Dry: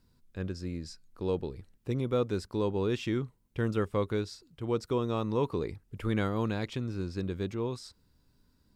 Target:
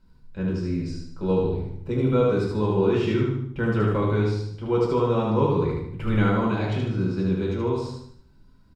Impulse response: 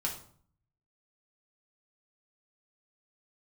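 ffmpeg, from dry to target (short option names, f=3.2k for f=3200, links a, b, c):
-filter_complex "[0:a]lowpass=f=2.6k:p=1,aecho=1:1:75|150|225|300|375:0.708|0.297|0.125|0.0525|0.022[a];[1:a]atrim=start_sample=2205,asetrate=43659,aresample=44100[b];[a][b]afir=irnorm=-1:irlink=0,volume=3.5dB"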